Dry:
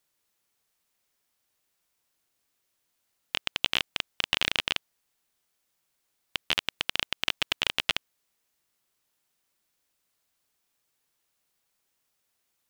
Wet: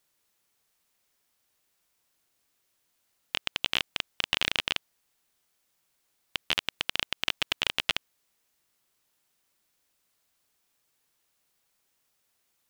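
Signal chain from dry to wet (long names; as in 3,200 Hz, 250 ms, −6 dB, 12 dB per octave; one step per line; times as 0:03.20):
brickwall limiter −9.5 dBFS, peak gain reduction 6 dB
level +2.5 dB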